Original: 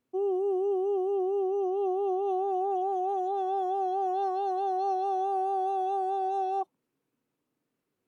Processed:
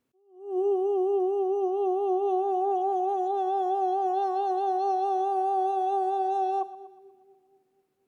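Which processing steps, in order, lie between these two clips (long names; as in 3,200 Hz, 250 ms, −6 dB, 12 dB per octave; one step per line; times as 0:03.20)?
echo with a time of its own for lows and highs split 530 Hz, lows 239 ms, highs 120 ms, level −16 dB
level that may rise only so fast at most 120 dB per second
level +2.5 dB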